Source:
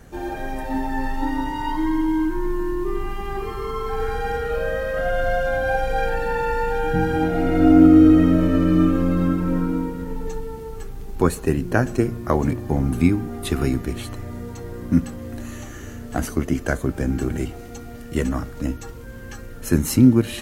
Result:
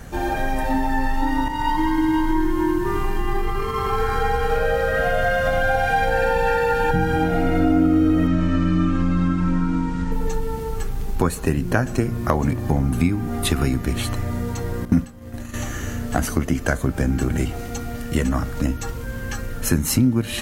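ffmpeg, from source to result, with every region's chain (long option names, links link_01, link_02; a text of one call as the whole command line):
ffmpeg -i in.wav -filter_complex "[0:a]asettb=1/sr,asplit=3[link_01][link_02][link_03];[link_01]atrim=end=1.484[link_04];[link_02]atrim=start=1.48:end=6.91,asetpts=PTS-STARTPTS,afade=type=in:duration=0.004:curve=qsin,afade=type=out:start_time=5.426:duration=0.004:curve=qsin,agate=range=-33dB:threshold=-23dB:ratio=3:release=100:detection=peak,aecho=1:1:192|492:0.631|0.668,atrim=end_sample=239463[link_05];[link_03]atrim=start=6.906[link_06];[link_04][link_05]acrossfade=duration=0.004:curve1=hsin:curve2=qsin[link_07];[link_07][link_06]acrossfade=duration=0.004:curve1=qsin:curve2=hsin,asettb=1/sr,asplit=3[link_08][link_09][link_10];[link_08]atrim=end=8.274[link_11];[link_09]atrim=start=8.27:end=10.12,asetpts=PTS-STARTPTS,afade=type=in:duration=0.004:curve=qsin,afade=type=out:start_time=1.846:duration=0.004:curve=qsin,lowpass=frequency=7800:width=0.5412,lowpass=frequency=7800:width=1.3066,equalizer=frequency=480:width=2.1:gain=-12.5[link_12];[link_10]atrim=start=10.116[link_13];[link_11][link_12]acrossfade=duration=0.004:curve1=hsin:curve2=qsin[link_14];[link_14][link_13]acrossfade=duration=0.004:curve1=qsin:curve2=hsin,asettb=1/sr,asplit=3[link_15][link_16][link_17];[link_15]atrim=end=14.854[link_18];[link_16]atrim=start=14.85:end=15.54,asetpts=PTS-STARTPTS,afade=type=in:duration=0.004:curve=qsin,afade=type=out:start_time=0.686:duration=0.004:curve=qsin,agate=range=-33dB:threshold=-23dB:ratio=3:release=100:detection=peak,acontrast=28[link_19];[link_17]atrim=start=15.536[link_20];[link_18][link_19]acrossfade=duration=0.004:curve1=hsin:curve2=qsin[link_21];[link_21][link_20]acrossfade=duration=0.004:curve1=qsin:curve2=hsin,equalizer=frequency=370:width=1.7:gain=-5.5,acompressor=threshold=-26dB:ratio=3,volume=8.5dB" out.wav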